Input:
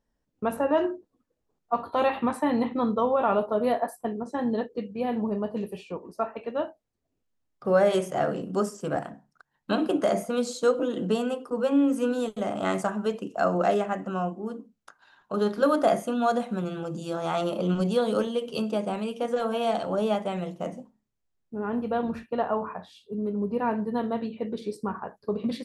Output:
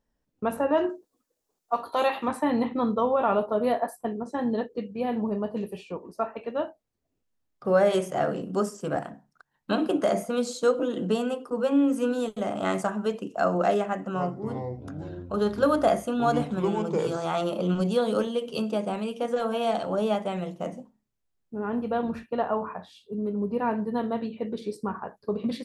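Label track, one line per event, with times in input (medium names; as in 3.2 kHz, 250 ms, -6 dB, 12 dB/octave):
0.890000	2.280000	tone controls bass -11 dB, treble +11 dB
13.860000	17.260000	ever faster or slower copies 279 ms, each echo -6 st, echoes 3, each echo -6 dB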